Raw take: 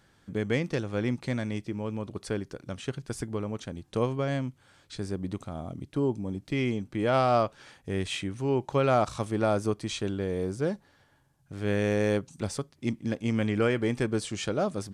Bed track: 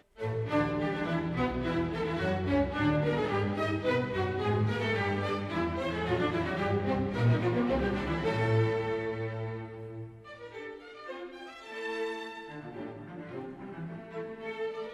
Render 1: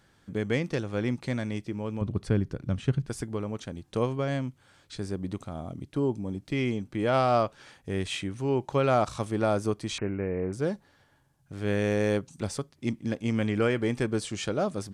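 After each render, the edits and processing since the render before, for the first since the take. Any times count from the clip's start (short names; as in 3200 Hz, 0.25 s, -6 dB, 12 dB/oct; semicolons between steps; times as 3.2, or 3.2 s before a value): 2.01–3.09 tone controls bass +12 dB, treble -6 dB; 9.98–10.53 careless resampling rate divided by 8×, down none, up filtered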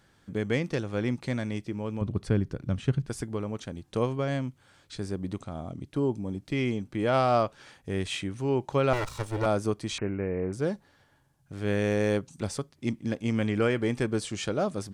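5.4–5.85 LPF 9300 Hz 24 dB/oct; 8.93–9.46 minimum comb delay 2.1 ms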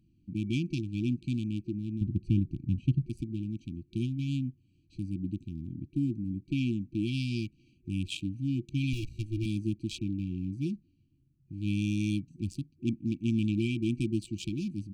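Wiener smoothing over 25 samples; FFT band-reject 360–2300 Hz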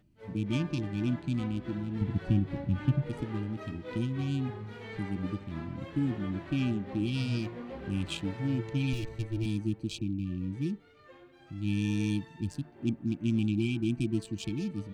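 add bed track -13 dB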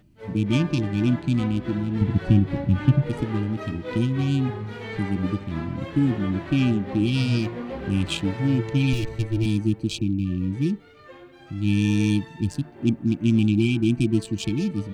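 gain +9 dB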